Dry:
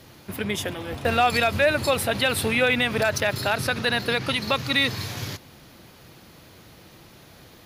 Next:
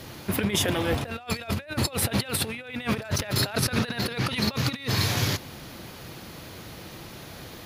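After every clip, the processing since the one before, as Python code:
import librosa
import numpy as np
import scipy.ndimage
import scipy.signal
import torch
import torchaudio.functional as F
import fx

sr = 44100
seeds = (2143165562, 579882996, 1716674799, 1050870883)

y = fx.over_compress(x, sr, threshold_db=-29.0, ratio=-0.5)
y = F.gain(torch.from_numpy(y), 2.0).numpy()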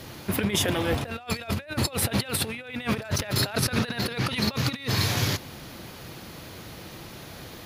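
y = x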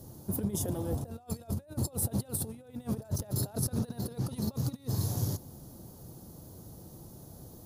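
y = fx.curve_eq(x, sr, hz=(140.0, 850.0, 2300.0, 6300.0, 9700.0), db=(0, -8, -30, -6, 0))
y = F.gain(torch.from_numpy(y), -4.0).numpy()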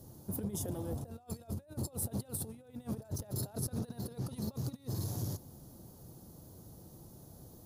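y = fx.transformer_sat(x, sr, knee_hz=220.0)
y = F.gain(torch.from_numpy(y), -4.5).numpy()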